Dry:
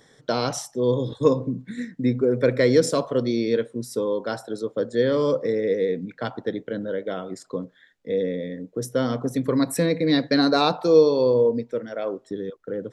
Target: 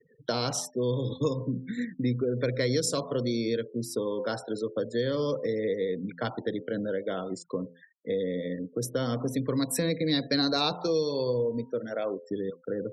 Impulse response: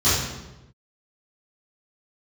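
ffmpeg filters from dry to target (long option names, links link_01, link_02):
-filter_complex "[0:a]bandreject=frequency=85.84:width_type=h:width=4,bandreject=frequency=171.68:width_type=h:width=4,bandreject=frequency=257.52:width_type=h:width=4,bandreject=frequency=343.36:width_type=h:width=4,bandreject=frequency=429.2:width_type=h:width=4,bandreject=frequency=515.04:width_type=h:width=4,bandreject=frequency=600.88:width_type=h:width=4,bandreject=frequency=686.72:width_type=h:width=4,bandreject=frequency=772.56:width_type=h:width=4,bandreject=frequency=858.4:width_type=h:width=4,bandreject=frequency=944.24:width_type=h:width=4,bandreject=frequency=1030.08:width_type=h:width=4,acrossover=split=130|3000[link_01][link_02][link_03];[link_02]acompressor=threshold=-27dB:ratio=4[link_04];[link_01][link_04][link_03]amix=inputs=3:normalize=0,afftfilt=real='re*gte(hypot(re,im),0.00631)':imag='im*gte(hypot(re,im),0.00631)':win_size=1024:overlap=0.75"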